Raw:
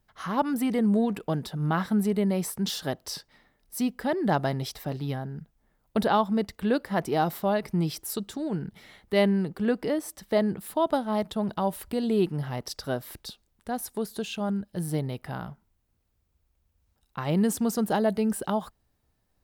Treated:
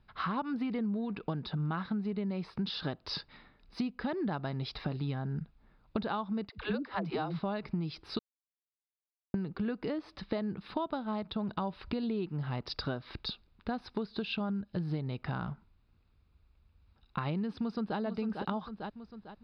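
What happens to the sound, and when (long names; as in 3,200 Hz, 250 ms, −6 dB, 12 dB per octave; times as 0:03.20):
0:06.49–0:07.40: all-pass dispersion lows, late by 100 ms, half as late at 310 Hz
0:08.19–0:09.34: silence
0:17.59–0:17.99: delay throw 450 ms, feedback 35%, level −9 dB
whole clip: elliptic low-pass filter 4,600 Hz, stop band 40 dB; comb filter 0.8 ms, depth 32%; downward compressor 12 to 1, threshold −36 dBFS; level +5 dB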